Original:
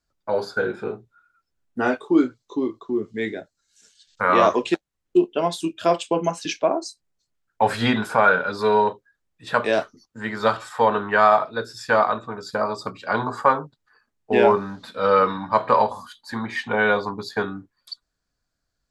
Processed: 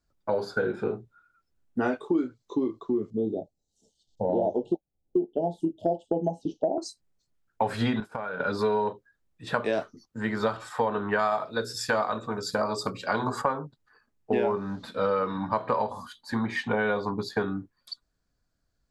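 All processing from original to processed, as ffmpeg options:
-filter_complex "[0:a]asettb=1/sr,asplit=3[a][b][c];[a]atrim=end=3.104[d];[b]atrim=start=3.1:end=6.78,asetpts=PTS-STARTPTS,afade=t=in:d=0.004:c=qsin,afade=t=out:st=3.676:d=0.004:c=qsin,acrossover=split=2600[e][f];[f]acompressor=threshold=-44dB:ratio=4:attack=1:release=60[g];[e][g]amix=inputs=2:normalize=0,asuperstop=centerf=1600:order=20:qfactor=0.78,highshelf=f=2.1k:t=q:w=1.5:g=-11[h];[c]atrim=start=6.776[i];[d][h]acrossfade=d=0.004:c1=hsin:c2=qsin[j];[j][i]acrossfade=d=0.004:c1=qsin:c2=hsin,asettb=1/sr,asplit=3[k][l][m];[k]atrim=end=8.004[n];[l]atrim=start=8:end=8.4,asetpts=PTS-STARTPTS,afade=t=in:d=0.004:c=qsin,afade=t=out:st=0.396:d=0.004:c=qsin,agate=range=-33dB:threshold=-22dB:ratio=3:release=100:detection=peak,acompressor=threshold=-28dB:ratio=20:attack=3.2:release=140:knee=1:detection=peak[o];[m]atrim=start=8.396[p];[n][o]acrossfade=d=0.004:c1=hsin:c2=qsin[q];[q][p]acrossfade=d=0.004:c1=qsin:c2=hsin,asettb=1/sr,asplit=3[r][s][t];[r]atrim=end=11.194[u];[s]atrim=start=11.19:end=13.42,asetpts=PTS-STARTPTS,afade=t=in:d=0.004:c=qsin,afade=t=out:st=2.226:d=0.004:c=qsin,highshelf=f=4k:g=11.5,bandreject=f=60:t=h:w=6,bandreject=f=120:t=h:w=6,bandreject=f=180:t=h:w=6,bandreject=f=240:t=h:w=6,bandreject=f=300:t=h:w=6,bandreject=f=360:t=h:w=6,bandreject=f=420:t=h:w=6,bandreject=f=480:t=h:w=6,bandreject=f=540:t=h:w=6[v];[t]atrim=start=13.416[w];[u][v]acrossfade=d=0.004:c1=hsin:c2=qsin[x];[x][w]acrossfade=d=0.004:c1=qsin:c2=hsin,tiltshelf=f=680:g=3.5,acompressor=threshold=-23dB:ratio=5"

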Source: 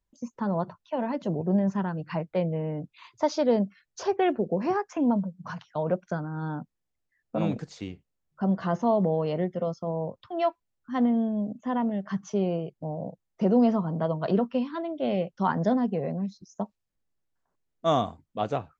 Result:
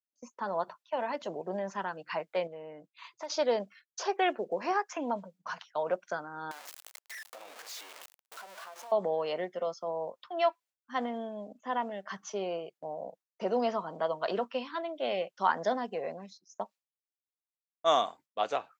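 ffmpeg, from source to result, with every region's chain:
-filter_complex "[0:a]asettb=1/sr,asplit=3[a][b][c];[a]atrim=end=2.474[d];[b]atrim=start=2.47:end=3.3,asetpts=PTS-STARTPTS,afade=t=in:d=0.004:c=qsin,afade=t=out:st=0.826:d=0.004:c=qsin,acompressor=threshold=-42dB:ratio=2:attack=3.2:release=140:knee=1:detection=peak,aecho=1:1:6.1:0.32,atrim=end_sample=36603,volume=28dB,asoftclip=hard,volume=-28dB[e];[c]atrim=start=3.296[f];[d][e]acrossfade=d=0.004:c1=hsin:c2=qsin[g];[g][f]acrossfade=d=0.004:c1=qsin:c2=hsin,asettb=1/sr,asplit=3[h][i][j];[h]atrim=end=6.514[k];[i]atrim=start=6.51:end=8.92,asetpts=PTS-STARTPTS,afade=t=in:d=0.004:c=qsin,afade=t=out:st=2.406:d=0.004:c=qsin,aeval=exprs='val(0)+0.5*0.0422*sgn(val(0))':c=same,highpass=580,acompressor=threshold=-41dB:ratio=12:attack=3.2:release=140:knee=1:detection=peak[l];[j]atrim=start=8.916[m];[k][l]acrossfade=d=0.004:c1=hsin:c2=qsin[n];[n][m]acrossfade=d=0.004:c1=qsin:c2=hsin,highpass=570,agate=range=-33dB:threshold=-51dB:ratio=3:detection=peak,adynamicequalizer=threshold=0.01:dfrequency=1500:dqfactor=0.7:tfrequency=1500:tqfactor=0.7:attack=5:release=100:ratio=0.375:range=2:mode=boostabove:tftype=highshelf"

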